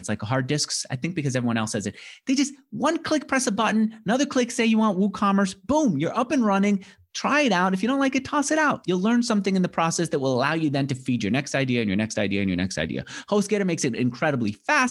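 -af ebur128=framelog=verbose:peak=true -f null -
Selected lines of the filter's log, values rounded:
Integrated loudness:
  I:         -23.5 LUFS
  Threshold: -33.5 LUFS
Loudness range:
  LRA:         2.6 LU
  Threshold: -43.3 LUFS
  LRA low:   -24.8 LUFS
  LRA high:  -22.3 LUFS
True peak:
  Peak:       -6.8 dBFS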